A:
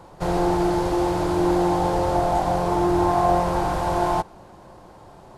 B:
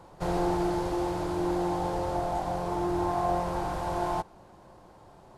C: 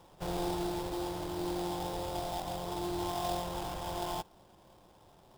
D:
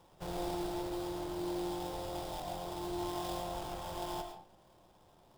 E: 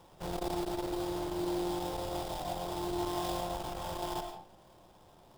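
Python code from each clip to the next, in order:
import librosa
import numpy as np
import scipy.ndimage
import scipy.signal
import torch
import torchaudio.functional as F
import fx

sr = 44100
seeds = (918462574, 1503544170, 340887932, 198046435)

y1 = fx.rider(x, sr, range_db=10, speed_s=2.0)
y1 = F.gain(torch.from_numpy(y1), -8.5).numpy()
y2 = fx.sample_hold(y1, sr, seeds[0], rate_hz=4300.0, jitter_pct=20)
y2 = F.gain(torch.from_numpy(y2), -7.0).numpy()
y3 = fx.rev_freeverb(y2, sr, rt60_s=0.56, hf_ratio=0.6, predelay_ms=65, drr_db=5.5)
y3 = F.gain(torch.from_numpy(y3), -4.5).numpy()
y4 = fx.transformer_sat(y3, sr, knee_hz=200.0)
y4 = F.gain(torch.from_numpy(y4), 4.5).numpy()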